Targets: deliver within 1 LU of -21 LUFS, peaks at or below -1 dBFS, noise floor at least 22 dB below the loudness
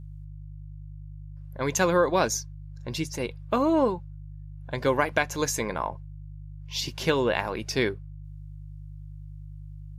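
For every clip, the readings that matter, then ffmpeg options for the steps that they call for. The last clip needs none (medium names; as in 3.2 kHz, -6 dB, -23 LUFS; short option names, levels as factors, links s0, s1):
hum 50 Hz; highest harmonic 150 Hz; hum level -39 dBFS; loudness -27.0 LUFS; peak level -8.5 dBFS; loudness target -21.0 LUFS
-> -af "bandreject=f=50:t=h:w=4,bandreject=f=100:t=h:w=4,bandreject=f=150:t=h:w=4"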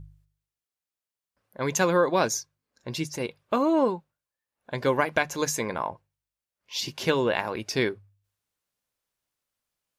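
hum not found; loudness -27.0 LUFS; peak level -8.0 dBFS; loudness target -21.0 LUFS
-> -af "volume=2"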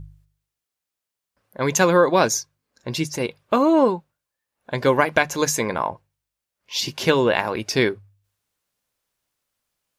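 loudness -21.0 LUFS; peak level -2.0 dBFS; noise floor -85 dBFS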